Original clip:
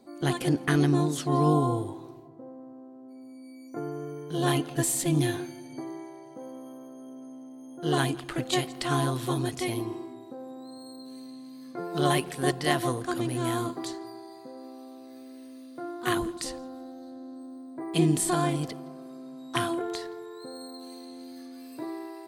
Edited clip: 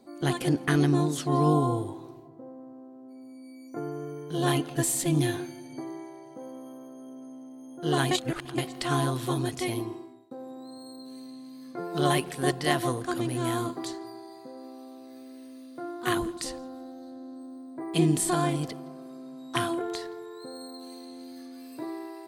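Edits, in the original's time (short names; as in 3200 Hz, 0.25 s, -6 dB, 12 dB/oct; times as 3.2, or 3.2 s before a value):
8.11–8.58 reverse
9.78–10.31 fade out, to -19 dB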